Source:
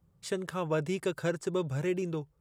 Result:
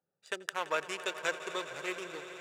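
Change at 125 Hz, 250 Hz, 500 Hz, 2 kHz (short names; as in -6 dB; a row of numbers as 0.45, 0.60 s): -24.5, -13.5, -7.0, +5.0 dB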